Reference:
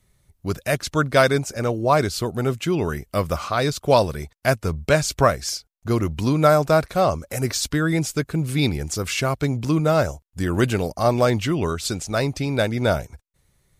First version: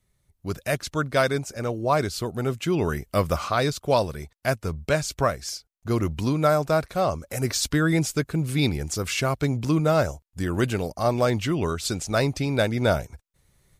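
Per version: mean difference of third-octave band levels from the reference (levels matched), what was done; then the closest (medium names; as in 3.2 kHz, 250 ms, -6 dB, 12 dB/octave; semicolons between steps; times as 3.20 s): 1.5 dB: level rider; trim -8 dB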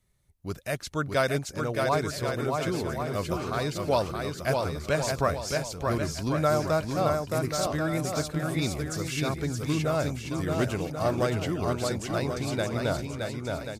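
7.0 dB: bouncing-ball echo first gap 620 ms, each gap 0.75×, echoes 5; trim -9 dB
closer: first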